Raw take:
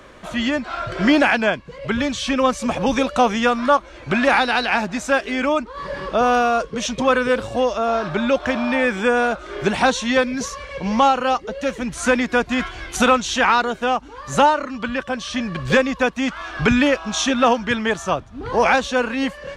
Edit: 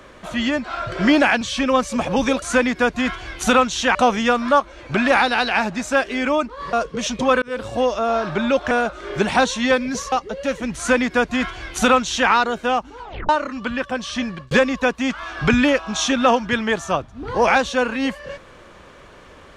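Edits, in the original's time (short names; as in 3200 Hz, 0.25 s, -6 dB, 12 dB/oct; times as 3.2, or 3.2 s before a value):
1.41–2.11 cut
5.9–6.52 cut
7.21–7.5 fade in
8.5–9.17 cut
10.58–11.3 cut
11.95–13.48 copy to 3.12
14.17 tape stop 0.30 s
15.41–15.69 fade out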